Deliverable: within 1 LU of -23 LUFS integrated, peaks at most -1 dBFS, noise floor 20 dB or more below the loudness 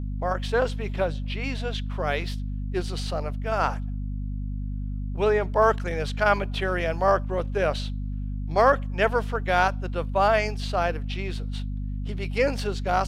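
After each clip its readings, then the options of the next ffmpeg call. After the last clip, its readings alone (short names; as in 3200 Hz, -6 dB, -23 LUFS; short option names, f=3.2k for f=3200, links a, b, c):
hum 50 Hz; harmonics up to 250 Hz; hum level -27 dBFS; loudness -26.0 LUFS; peak -6.5 dBFS; loudness target -23.0 LUFS
-> -af "bandreject=f=50:t=h:w=4,bandreject=f=100:t=h:w=4,bandreject=f=150:t=h:w=4,bandreject=f=200:t=h:w=4,bandreject=f=250:t=h:w=4"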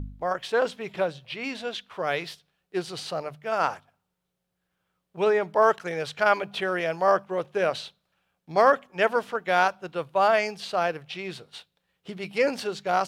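hum none; loudness -26.0 LUFS; peak -7.0 dBFS; loudness target -23.0 LUFS
-> -af "volume=3dB"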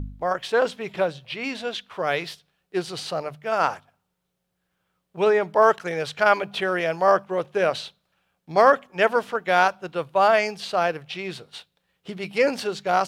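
loudness -23.0 LUFS; peak -4.0 dBFS; noise floor -77 dBFS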